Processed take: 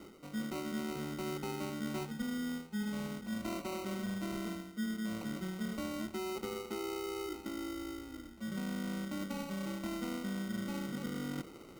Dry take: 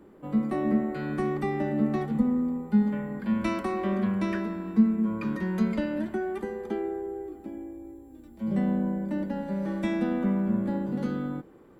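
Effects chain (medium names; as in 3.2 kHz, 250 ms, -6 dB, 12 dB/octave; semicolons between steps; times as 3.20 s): reverse; compression 5:1, threshold -39 dBFS, peak gain reduction 21 dB; reverse; sample-and-hold 26×; trim +1.5 dB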